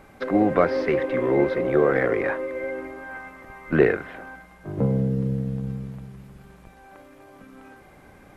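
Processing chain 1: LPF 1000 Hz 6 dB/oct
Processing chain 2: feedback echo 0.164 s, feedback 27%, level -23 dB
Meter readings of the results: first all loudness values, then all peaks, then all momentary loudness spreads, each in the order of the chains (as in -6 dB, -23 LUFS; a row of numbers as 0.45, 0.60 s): -24.5, -23.5 LUFS; -6.0, -4.5 dBFS; 19, 20 LU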